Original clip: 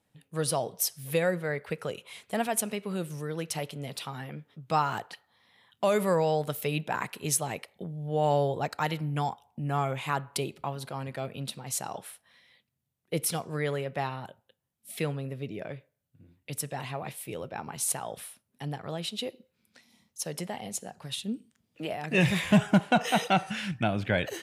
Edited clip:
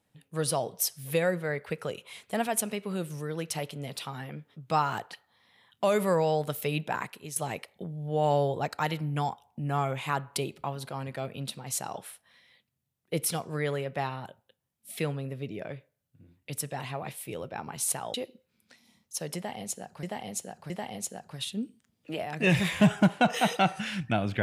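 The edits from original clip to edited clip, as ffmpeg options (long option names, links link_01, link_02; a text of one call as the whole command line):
ffmpeg -i in.wav -filter_complex "[0:a]asplit=5[link_01][link_02][link_03][link_04][link_05];[link_01]atrim=end=7.36,asetpts=PTS-STARTPTS,afade=type=out:start_time=6.91:duration=0.45:silence=0.177828[link_06];[link_02]atrim=start=7.36:end=18.142,asetpts=PTS-STARTPTS,afade=type=in:duration=0.004:curve=hsin:silence=0.177828[link_07];[link_03]atrim=start=19.188:end=21.082[link_08];[link_04]atrim=start=20.408:end=21.082[link_09];[link_05]atrim=start=20.408[link_10];[link_06][link_07]concat=n=2:v=0:a=1[link_11];[link_11][link_08]acrossfade=duration=0.004:curve1=hsin:curve2=hsin[link_12];[link_12][link_09]acrossfade=duration=0.004:curve1=hsin:curve2=hsin[link_13];[link_13][link_10]acrossfade=duration=0.004:curve1=hsin:curve2=hsin" out.wav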